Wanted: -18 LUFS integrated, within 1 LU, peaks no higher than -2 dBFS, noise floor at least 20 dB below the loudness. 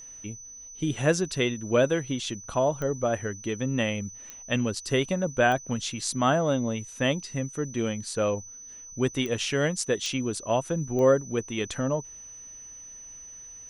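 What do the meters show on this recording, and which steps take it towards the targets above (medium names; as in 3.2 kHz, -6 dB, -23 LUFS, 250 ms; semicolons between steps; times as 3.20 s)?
clicks found 6; steady tone 6 kHz; tone level -42 dBFS; loudness -27.0 LUFS; peak level -10.0 dBFS; loudness target -18.0 LUFS
-> de-click; band-stop 6 kHz, Q 30; trim +9 dB; peak limiter -2 dBFS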